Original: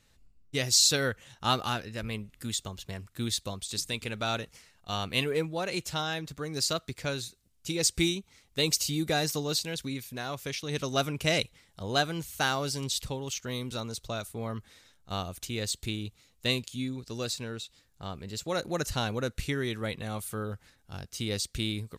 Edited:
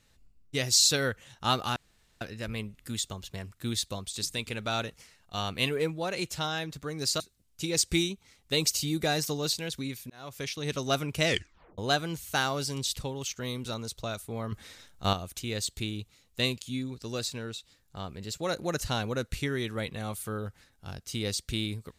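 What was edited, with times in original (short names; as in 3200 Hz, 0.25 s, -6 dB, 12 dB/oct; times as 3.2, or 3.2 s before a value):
1.76 insert room tone 0.45 s
6.75–7.26 cut
10.16–10.5 fade in
11.32 tape stop 0.52 s
14.58–15.19 gain +7.5 dB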